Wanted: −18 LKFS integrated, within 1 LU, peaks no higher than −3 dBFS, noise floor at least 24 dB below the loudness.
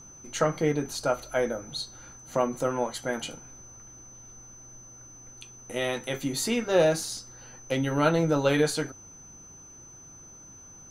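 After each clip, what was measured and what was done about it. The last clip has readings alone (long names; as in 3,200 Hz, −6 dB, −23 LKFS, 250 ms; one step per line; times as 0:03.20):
interfering tone 6,100 Hz; level of the tone −47 dBFS; integrated loudness −28.0 LKFS; sample peak −10.0 dBFS; target loudness −18.0 LKFS
→ notch filter 6,100 Hz, Q 30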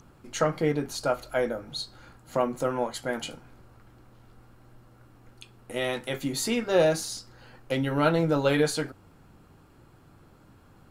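interfering tone none found; integrated loudness −28.0 LKFS; sample peak −10.0 dBFS; target loudness −18.0 LKFS
→ level +10 dB
brickwall limiter −3 dBFS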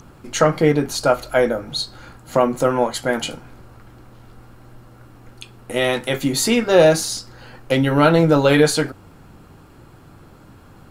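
integrated loudness −18.0 LKFS; sample peak −3.0 dBFS; background noise floor −46 dBFS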